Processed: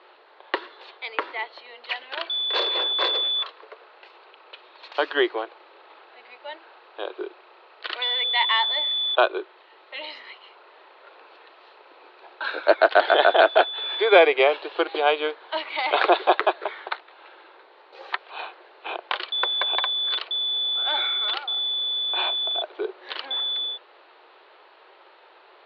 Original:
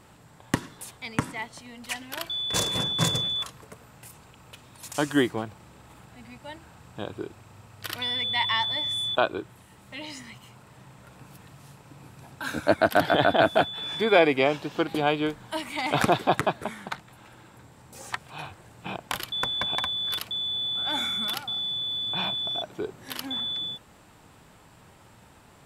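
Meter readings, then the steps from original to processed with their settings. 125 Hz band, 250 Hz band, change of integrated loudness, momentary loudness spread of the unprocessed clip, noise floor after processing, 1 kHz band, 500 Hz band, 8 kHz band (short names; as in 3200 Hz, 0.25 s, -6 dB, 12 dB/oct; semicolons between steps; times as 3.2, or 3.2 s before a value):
under -40 dB, -6.0 dB, +4.0 dB, 18 LU, -53 dBFS, +4.5 dB, +4.5 dB, under -30 dB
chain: Chebyshev band-pass 360–4300 Hz, order 5; gain +5 dB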